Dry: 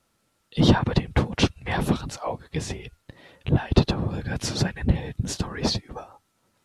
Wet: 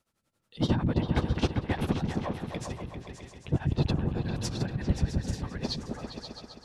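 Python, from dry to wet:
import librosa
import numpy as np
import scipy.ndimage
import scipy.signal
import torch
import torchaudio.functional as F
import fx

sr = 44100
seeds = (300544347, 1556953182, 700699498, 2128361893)

y = x * (1.0 - 0.87 / 2.0 + 0.87 / 2.0 * np.cos(2.0 * np.pi * 11.0 * (np.arange(len(x)) / sr)))
y = fx.echo_opening(y, sr, ms=132, hz=200, octaves=2, feedback_pct=70, wet_db=0)
y = y * librosa.db_to_amplitude(-5.5)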